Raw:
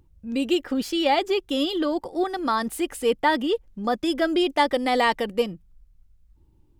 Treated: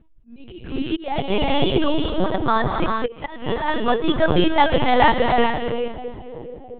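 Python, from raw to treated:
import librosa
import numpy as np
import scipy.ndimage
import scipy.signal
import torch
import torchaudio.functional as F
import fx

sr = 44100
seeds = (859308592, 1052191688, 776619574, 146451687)

y = fx.echo_split(x, sr, split_hz=600.0, low_ms=660, high_ms=216, feedback_pct=52, wet_db=-13.5)
y = fx.dmg_buzz(y, sr, base_hz=120.0, harmonics=4, level_db=-34.0, tilt_db=-7, odd_only=False, at=(0.47, 1.75), fade=0.02)
y = fx.rev_gated(y, sr, seeds[0], gate_ms=470, shape='rising', drr_db=2.5)
y = fx.auto_swell(y, sr, attack_ms=502.0)
y = fx.lpc_vocoder(y, sr, seeds[1], excitation='pitch_kept', order=10)
y = F.gain(torch.from_numpy(y), 4.5).numpy()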